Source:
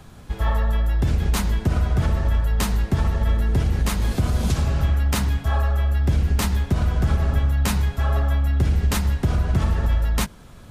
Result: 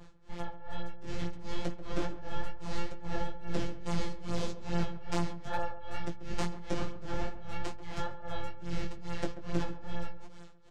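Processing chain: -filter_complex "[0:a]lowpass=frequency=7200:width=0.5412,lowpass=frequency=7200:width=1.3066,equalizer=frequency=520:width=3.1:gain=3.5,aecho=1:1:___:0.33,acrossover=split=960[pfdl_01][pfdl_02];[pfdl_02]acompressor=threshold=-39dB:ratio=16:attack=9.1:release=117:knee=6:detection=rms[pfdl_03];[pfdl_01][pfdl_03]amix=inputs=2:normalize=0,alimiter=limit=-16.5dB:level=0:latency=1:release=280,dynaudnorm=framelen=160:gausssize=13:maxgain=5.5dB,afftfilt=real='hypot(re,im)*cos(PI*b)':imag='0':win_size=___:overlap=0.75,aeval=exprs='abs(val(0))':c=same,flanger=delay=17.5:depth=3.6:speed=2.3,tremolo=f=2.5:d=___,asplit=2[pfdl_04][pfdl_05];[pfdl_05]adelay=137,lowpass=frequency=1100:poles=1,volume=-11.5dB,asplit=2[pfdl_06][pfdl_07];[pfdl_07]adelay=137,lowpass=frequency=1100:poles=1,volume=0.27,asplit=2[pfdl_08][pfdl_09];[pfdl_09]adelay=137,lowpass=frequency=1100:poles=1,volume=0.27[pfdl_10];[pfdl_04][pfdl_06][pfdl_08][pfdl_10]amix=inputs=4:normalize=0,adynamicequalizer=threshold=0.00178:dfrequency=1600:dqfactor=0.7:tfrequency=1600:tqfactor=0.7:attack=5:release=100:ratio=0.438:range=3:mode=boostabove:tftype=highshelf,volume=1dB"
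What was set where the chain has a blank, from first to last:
2.3, 1024, 1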